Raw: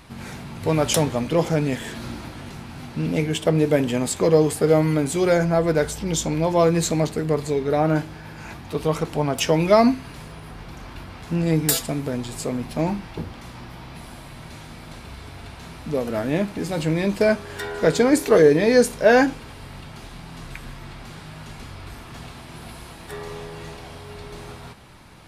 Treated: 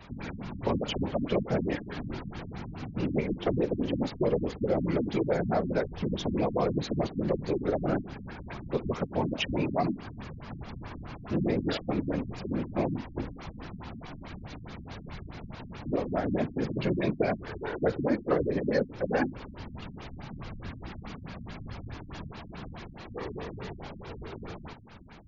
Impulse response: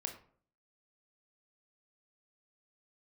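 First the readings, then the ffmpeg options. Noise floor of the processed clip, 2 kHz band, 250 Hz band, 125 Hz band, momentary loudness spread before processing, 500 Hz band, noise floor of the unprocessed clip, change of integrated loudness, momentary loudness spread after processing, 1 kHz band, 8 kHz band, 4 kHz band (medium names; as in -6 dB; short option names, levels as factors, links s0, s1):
-46 dBFS, -11.0 dB, -7.5 dB, -8.5 dB, 23 LU, -10.5 dB, -41 dBFS, -10.5 dB, 15 LU, -9.0 dB, under -25 dB, -10.0 dB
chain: -filter_complex "[0:a]afftfilt=real='hypot(re,im)*cos(2*PI*random(0))':imag='hypot(re,im)*sin(2*PI*random(1))':win_size=512:overlap=0.75,acrossover=split=180|4400[s0][s1][s2];[s0]acompressor=threshold=0.01:ratio=4[s3];[s1]acompressor=threshold=0.0355:ratio=4[s4];[s2]acompressor=threshold=0.00141:ratio=4[s5];[s3][s4][s5]amix=inputs=3:normalize=0,afftfilt=real='re*lt(b*sr/1024,270*pow(7300/270,0.5+0.5*sin(2*PI*4.7*pts/sr)))':imag='im*lt(b*sr/1024,270*pow(7300/270,0.5+0.5*sin(2*PI*4.7*pts/sr)))':win_size=1024:overlap=0.75,volume=1.58"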